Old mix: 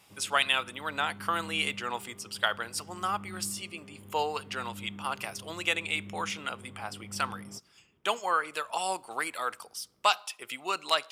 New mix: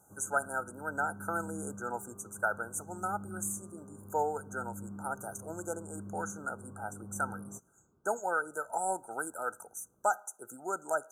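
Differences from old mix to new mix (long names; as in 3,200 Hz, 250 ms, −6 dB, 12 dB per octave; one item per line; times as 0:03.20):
speech: add Butterworth band-reject 1,100 Hz, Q 3
master: add linear-phase brick-wall band-stop 1,600–5,900 Hz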